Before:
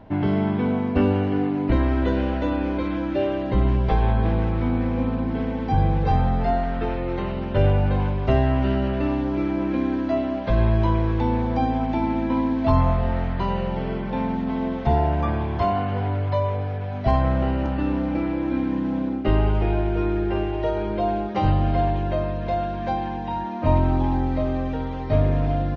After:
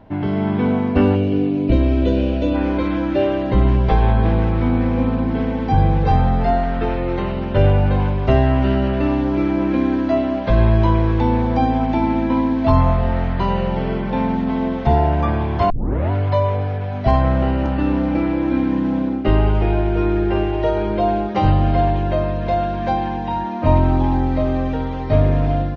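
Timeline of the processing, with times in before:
1.15–2.55 spectral gain 690–2200 Hz -11 dB
15.7 tape start 0.41 s
whole clip: AGC gain up to 5.5 dB

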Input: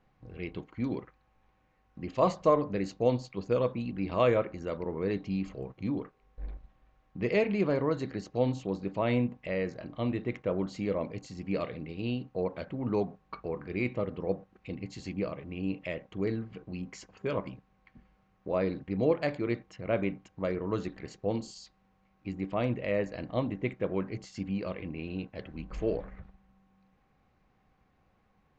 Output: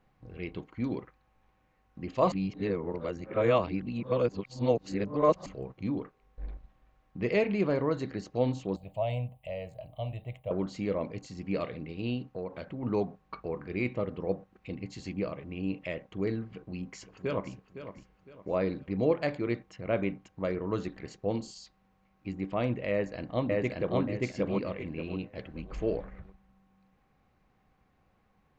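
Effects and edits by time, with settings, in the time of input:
2.32–5.46 reverse
8.76–10.51 EQ curve 130 Hz 0 dB, 230 Hz -19 dB, 380 Hz -21 dB, 650 Hz +4 dB, 1500 Hz -23 dB, 3000 Hz -1 dB, 5800 Hz -20 dB, 9200 Hz +15 dB
12.31–12.83 compressor 2:1, threshold -36 dBFS
16.5–17.52 echo throw 0.51 s, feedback 35%, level -11.5 dB
22.91–24 echo throw 0.58 s, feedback 30%, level 0 dB

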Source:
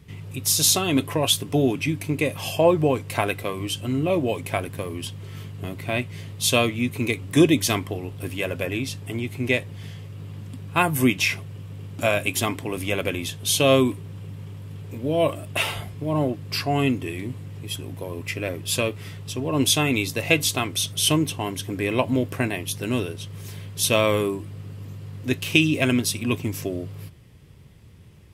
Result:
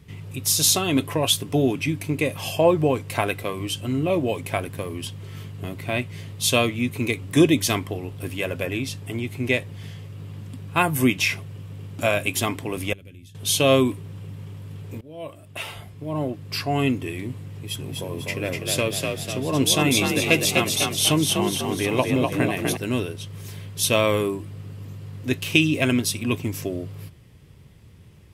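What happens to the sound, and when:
12.93–13.35 passive tone stack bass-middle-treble 10-0-1
15.01–16.89 fade in, from -22 dB
17.5–22.77 frequency-shifting echo 0.248 s, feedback 48%, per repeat +41 Hz, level -3.5 dB

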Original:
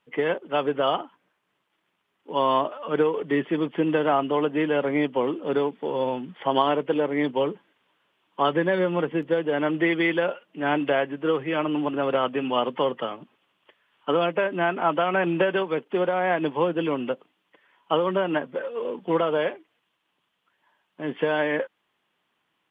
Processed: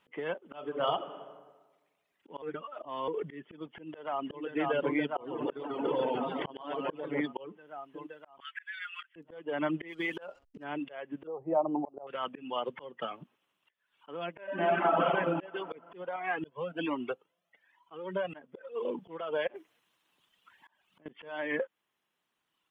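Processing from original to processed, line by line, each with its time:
0.46–0.98 reverb throw, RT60 1.3 s, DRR 4 dB
2.42–3.08 reverse
3.72–4.42 echo throw 0.52 s, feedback 75%, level -6 dB
5.06–7.21 warbling echo 0.143 s, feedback 59%, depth 100 cents, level -4 dB
8.4–9.16 steep high-pass 1400 Hz 48 dB/oct
9.88–10.64 backlash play -46 dBFS
11.27–12.07 EQ curve 290 Hz 0 dB, 550 Hz +9 dB, 780 Hz +14 dB, 1600 Hz -18 dB, 4800 Hz -29 dB
14.43–15.05 reverb throw, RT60 2.5 s, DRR -7 dB
16.16–18.34 cascading flanger rising 1.2 Hz
19.47–21.06 negative-ratio compressor -43 dBFS
whole clip: reverb removal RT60 1.6 s; compressor 2.5:1, threshold -32 dBFS; auto swell 0.349 s; gain +2.5 dB

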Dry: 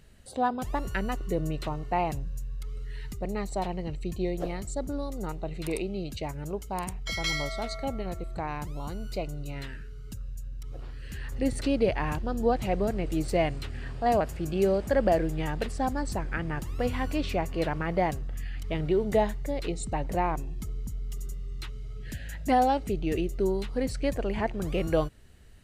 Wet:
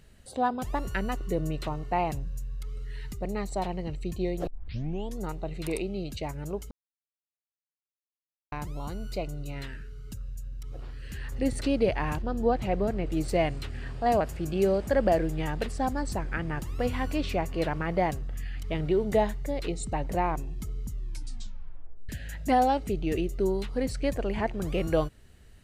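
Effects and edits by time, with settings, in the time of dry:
4.47 tape start 0.74 s
6.71–8.52 mute
12.22–13.17 high shelf 5300 Hz -9 dB
20.88 tape stop 1.21 s

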